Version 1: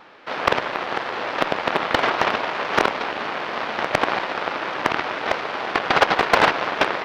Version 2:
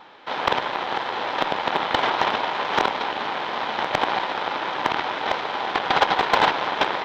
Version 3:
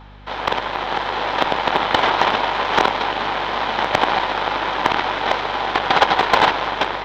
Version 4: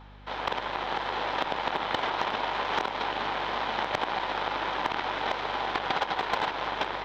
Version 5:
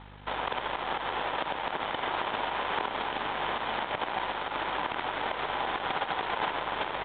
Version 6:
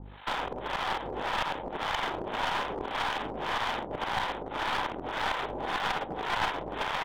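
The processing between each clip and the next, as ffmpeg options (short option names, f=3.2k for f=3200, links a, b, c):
-filter_complex "[0:a]superequalizer=9b=1.78:13b=1.78:16b=0.251,asplit=2[a][b];[b]alimiter=limit=-11.5dB:level=0:latency=1:release=17,volume=-1.5dB[c];[a][c]amix=inputs=2:normalize=0,volume=-7dB"
-af "dynaudnorm=f=220:g=7:m=7dB,aeval=exprs='val(0)+0.00891*(sin(2*PI*50*n/s)+sin(2*PI*2*50*n/s)/2+sin(2*PI*3*50*n/s)/3+sin(2*PI*4*50*n/s)/4+sin(2*PI*5*50*n/s)/5)':c=same"
-af "acompressor=threshold=-17dB:ratio=6,volume=-7.5dB"
-af "alimiter=level_in=0.5dB:limit=-24dB:level=0:latency=1:release=223,volume=-0.5dB,aresample=8000,aeval=exprs='sgn(val(0))*max(abs(val(0))-0.00224,0)':c=same,aresample=44100,aecho=1:1:133:0.282,volume=5.5dB"
-filter_complex "[0:a]asplit=2[a][b];[b]adelay=37,volume=-14dB[c];[a][c]amix=inputs=2:normalize=0,acrossover=split=590[d][e];[d]aeval=exprs='val(0)*(1-1/2+1/2*cos(2*PI*1.8*n/s))':c=same[f];[e]aeval=exprs='val(0)*(1-1/2-1/2*cos(2*PI*1.8*n/s))':c=same[g];[f][g]amix=inputs=2:normalize=0,aeval=exprs='clip(val(0),-1,0.0158)':c=same,volume=6dB"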